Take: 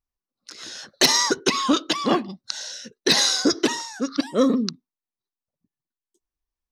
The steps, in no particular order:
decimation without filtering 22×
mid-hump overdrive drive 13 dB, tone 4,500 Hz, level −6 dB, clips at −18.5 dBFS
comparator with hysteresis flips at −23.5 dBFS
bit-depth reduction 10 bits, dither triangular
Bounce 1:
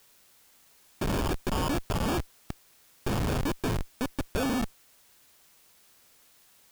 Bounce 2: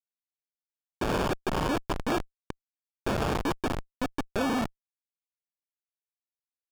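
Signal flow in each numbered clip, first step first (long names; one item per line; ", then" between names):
mid-hump overdrive, then decimation without filtering, then comparator with hysteresis, then bit-depth reduction
decimation without filtering, then bit-depth reduction, then comparator with hysteresis, then mid-hump overdrive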